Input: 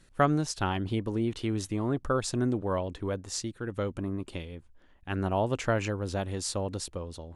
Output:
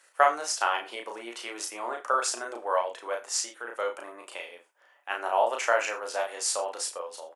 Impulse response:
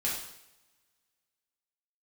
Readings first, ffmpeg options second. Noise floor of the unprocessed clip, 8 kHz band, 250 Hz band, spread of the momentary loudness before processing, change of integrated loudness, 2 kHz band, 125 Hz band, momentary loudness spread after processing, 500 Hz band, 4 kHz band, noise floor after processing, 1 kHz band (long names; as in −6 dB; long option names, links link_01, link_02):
−58 dBFS, +7.0 dB, −17.5 dB, 9 LU, +2.0 dB, +7.0 dB, below −40 dB, 14 LU, +1.5 dB, +4.0 dB, −62 dBFS, +6.5 dB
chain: -filter_complex "[0:a]highpass=frequency=610:width=0.5412,highpass=frequency=610:width=1.3066,equalizer=frequency=3800:width_type=o:width=0.56:gain=-8,asplit=2[link_01][link_02];[link_02]adelay=34,volume=-3dB[link_03];[link_01][link_03]amix=inputs=2:normalize=0,asplit=2[link_04][link_05];[1:a]atrim=start_sample=2205,afade=type=out:start_time=0.14:duration=0.01,atrim=end_sample=6615[link_06];[link_05][link_06]afir=irnorm=-1:irlink=0,volume=-13dB[link_07];[link_04][link_07]amix=inputs=2:normalize=0,volume=4dB"